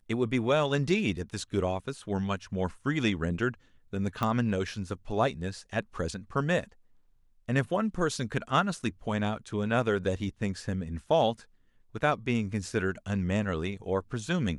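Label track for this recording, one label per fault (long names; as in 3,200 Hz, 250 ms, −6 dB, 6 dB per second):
4.230000	4.230000	click −16 dBFS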